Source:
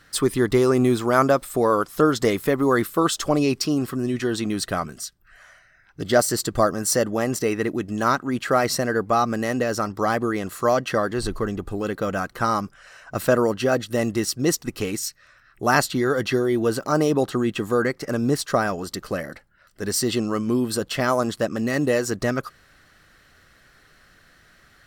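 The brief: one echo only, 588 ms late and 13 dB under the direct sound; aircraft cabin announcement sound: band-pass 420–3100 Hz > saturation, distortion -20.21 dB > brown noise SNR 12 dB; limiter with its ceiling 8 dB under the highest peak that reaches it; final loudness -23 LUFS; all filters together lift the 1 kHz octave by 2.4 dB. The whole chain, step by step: peaking EQ 1 kHz +3.5 dB; peak limiter -10 dBFS; band-pass 420–3100 Hz; delay 588 ms -13 dB; saturation -12.5 dBFS; brown noise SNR 12 dB; trim +4 dB

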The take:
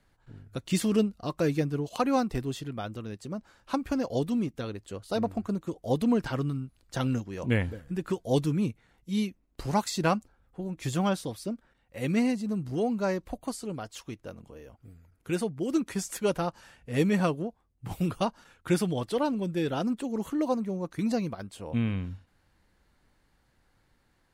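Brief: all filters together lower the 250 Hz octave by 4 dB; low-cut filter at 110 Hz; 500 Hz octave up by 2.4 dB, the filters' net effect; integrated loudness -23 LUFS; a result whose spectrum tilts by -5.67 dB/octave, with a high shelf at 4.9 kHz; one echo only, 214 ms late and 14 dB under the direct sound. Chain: high-pass 110 Hz; peaking EQ 250 Hz -6 dB; peaking EQ 500 Hz +4.5 dB; treble shelf 4.9 kHz -3.5 dB; delay 214 ms -14 dB; trim +8 dB

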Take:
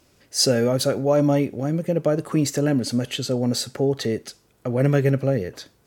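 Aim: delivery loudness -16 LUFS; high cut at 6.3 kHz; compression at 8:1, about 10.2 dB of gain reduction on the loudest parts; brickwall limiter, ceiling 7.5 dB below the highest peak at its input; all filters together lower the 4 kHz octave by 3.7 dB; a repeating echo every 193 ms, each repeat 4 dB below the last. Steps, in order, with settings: low-pass 6.3 kHz; peaking EQ 4 kHz -3.5 dB; compression 8:1, threshold -25 dBFS; peak limiter -23 dBFS; feedback delay 193 ms, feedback 63%, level -4 dB; trim +15 dB

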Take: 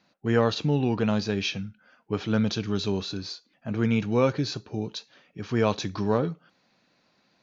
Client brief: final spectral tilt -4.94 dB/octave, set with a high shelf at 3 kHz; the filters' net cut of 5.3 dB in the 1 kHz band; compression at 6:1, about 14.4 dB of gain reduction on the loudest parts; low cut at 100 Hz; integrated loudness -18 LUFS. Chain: high-pass 100 Hz; peaking EQ 1 kHz -7.5 dB; treble shelf 3 kHz +5.5 dB; compression 6:1, threshold -35 dBFS; trim +21 dB

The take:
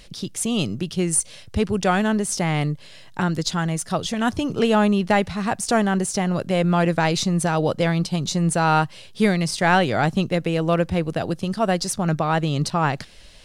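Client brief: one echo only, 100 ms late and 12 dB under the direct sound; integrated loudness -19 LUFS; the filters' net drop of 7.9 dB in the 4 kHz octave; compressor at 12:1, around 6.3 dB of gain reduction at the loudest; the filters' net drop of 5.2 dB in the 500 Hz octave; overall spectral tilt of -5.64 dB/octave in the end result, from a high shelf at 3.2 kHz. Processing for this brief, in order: peaking EQ 500 Hz -6.5 dB; treble shelf 3.2 kHz -6 dB; peaking EQ 4 kHz -6 dB; compression 12:1, threshold -22 dBFS; delay 100 ms -12 dB; trim +8.5 dB

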